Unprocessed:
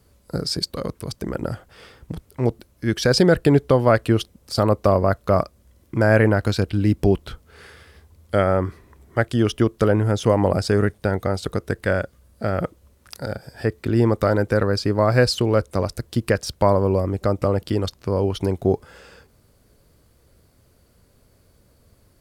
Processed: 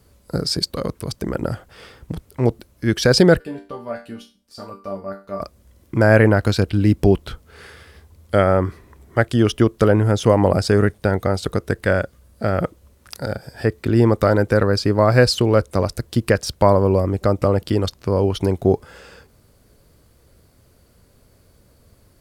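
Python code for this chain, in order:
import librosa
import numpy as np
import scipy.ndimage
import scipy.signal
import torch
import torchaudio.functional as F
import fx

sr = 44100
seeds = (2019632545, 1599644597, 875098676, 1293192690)

y = fx.resonator_bank(x, sr, root=55, chord='minor', decay_s=0.32, at=(3.39, 5.4), fade=0.02)
y = y * librosa.db_to_amplitude(3.0)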